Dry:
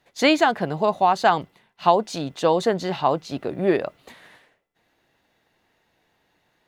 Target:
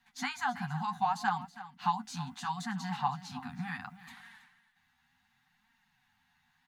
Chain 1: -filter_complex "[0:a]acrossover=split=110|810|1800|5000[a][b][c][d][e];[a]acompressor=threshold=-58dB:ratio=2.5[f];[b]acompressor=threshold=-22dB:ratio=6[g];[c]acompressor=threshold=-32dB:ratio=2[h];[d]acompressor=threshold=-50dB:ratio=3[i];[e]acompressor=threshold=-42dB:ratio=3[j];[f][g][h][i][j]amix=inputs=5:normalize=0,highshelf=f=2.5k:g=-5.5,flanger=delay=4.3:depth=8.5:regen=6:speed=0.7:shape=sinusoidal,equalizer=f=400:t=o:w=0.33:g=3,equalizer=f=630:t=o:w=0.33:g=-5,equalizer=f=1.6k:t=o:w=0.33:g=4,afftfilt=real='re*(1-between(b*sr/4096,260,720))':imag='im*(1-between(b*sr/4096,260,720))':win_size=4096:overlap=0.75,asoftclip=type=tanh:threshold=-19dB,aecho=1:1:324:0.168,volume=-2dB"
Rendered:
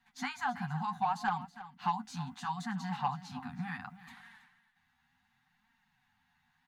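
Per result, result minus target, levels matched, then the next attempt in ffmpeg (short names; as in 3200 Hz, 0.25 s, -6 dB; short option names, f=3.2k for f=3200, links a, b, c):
soft clip: distortion +14 dB; 4000 Hz band -2.5 dB
-filter_complex "[0:a]acrossover=split=110|810|1800|5000[a][b][c][d][e];[a]acompressor=threshold=-58dB:ratio=2.5[f];[b]acompressor=threshold=-22dB:ratio=6[g];[c]acompressor=threshold=-32dB:ratio=2[h];[d]acompressor=threshold=-50dB:ratio=3[i];[e]acompressor=threshold=-42dB:ratio=3[j];[f][g][h][i][j]amix=inputs=5:normalize=0,highshelf=f=2.5k:g=-5.5,flanger=delay=4.3:depth=8.5:regen=6:speed=0.7:shape=sinusoidal,equalizer=f=400:t=o:w=0.33:g=3,equalizer=f=630:t=o:w=0.33:g=-5,equalizer=f=1.6k:t=o:w=0.33:g=4,afftfilt=real='re*(1-between(b*sr/4096,260,720))':imag='im*(1-between(b*sr/4096,260,720))':win_size=4096:overlap=0.75,asoftclip=type=tanh:threshold=-10dB,aecho=1:1:324:0.168,volume=-2dB"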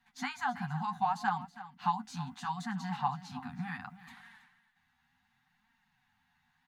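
4000 Hz band -3.0 dB
-filter_complex "[0:a]acrossover=split=110|810|1800|5000[a][b][c][d][e];[a]acompressor=threshold=-58dB:ratio=2.5[f];[b]acompressor=threshold=-22dB:ratio=6[g];[c]acompressor=threshold=-32dB:ratio=2[h];[d]acompressor=threshold=-50dB:ratio=3[i];[e]acompressor=threshold=-42dB:ratio=3[j];[f][g][h][i][j]amix=inputs=5:normalize=0,flanger=delay=4.3:depth=8.5:regen=6:speed=0.7:shape=sinusoidal,equalizer=f=400:t=o:w=0.33:g=3,equalizer=f=630:t=o:w=0.33:g=-5,equalizer=f=1.6k:t=o:w=0.33:g=4,afftfilt=real='re*(1-between(b*sr/4096,260,720))':imag='im*(1-between(b*sr/4096,260,720))':win_size=4096:overlap=0.75,asoftclip=type=tanh:threshold=-10dB,aecho=1:1:324:0.168,volume=-2dB"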